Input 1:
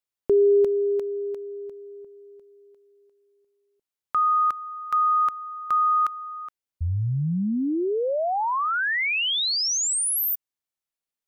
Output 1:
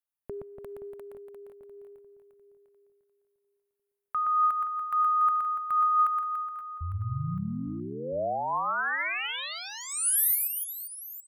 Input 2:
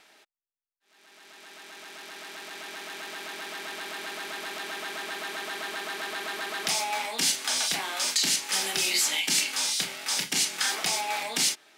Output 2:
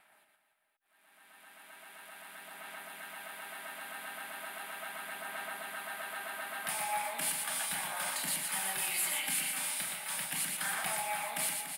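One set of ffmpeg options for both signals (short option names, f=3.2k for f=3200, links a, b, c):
-filter_complex "[0:a]asplit=2[a][b];[b]aecho=0:1:120|288|523.2|852.5|1313:0.631|0.398|0.251|0.158|0.1[c];[a][c]amix=inputs=2:normalize=0,aphaser=in_gain=1:out_gain=1:delay=3.9:decay=0.2:speed=0.37:type=sinusoidal,firequalizer=gain_entry='entry(170,0);entry(400,-13);entry(600,0);entry(980,1);entry(1600,1);entry(5900,-17);entry(9600,6)':delay=0.05:min_phase=1,volume=-7.5dB"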